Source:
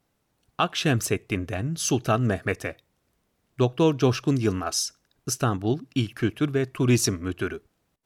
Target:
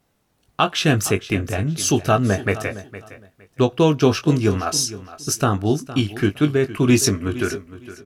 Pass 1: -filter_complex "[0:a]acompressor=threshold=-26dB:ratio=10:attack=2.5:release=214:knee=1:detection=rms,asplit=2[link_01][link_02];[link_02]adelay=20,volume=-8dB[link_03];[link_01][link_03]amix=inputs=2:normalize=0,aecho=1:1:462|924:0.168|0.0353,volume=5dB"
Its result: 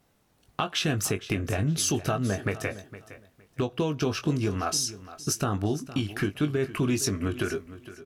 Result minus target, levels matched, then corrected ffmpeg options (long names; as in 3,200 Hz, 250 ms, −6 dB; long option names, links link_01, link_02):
downward compressor: peak gain reduction +13.5 dB
-filter_complex "[0:a]asplit=2[link_01][link_02];[link_02]adelay=20,volume=-8dB[link_03];[link_01][link_03]amix=inputs=2:normalize=0,aecho=1:1:462|924:0.168|0.0353,volume=5dB"